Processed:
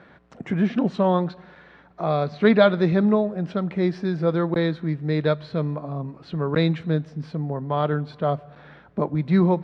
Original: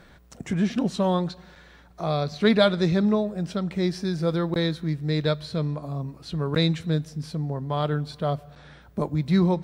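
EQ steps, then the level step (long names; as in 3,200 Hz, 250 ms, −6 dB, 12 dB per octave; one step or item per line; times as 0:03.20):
Bessel high-pass filter 160 Hz, order 2
low-pass filter 2,300 Hz 12 dB per octave
+4.0 dB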